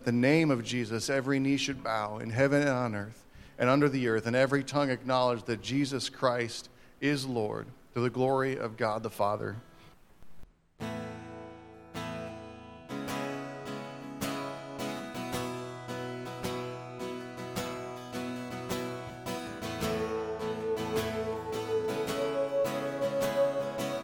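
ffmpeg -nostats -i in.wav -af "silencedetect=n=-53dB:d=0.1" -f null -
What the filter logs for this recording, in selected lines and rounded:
silence_start: 10.49
silence_end: 10.79 | silence_duration: 0.30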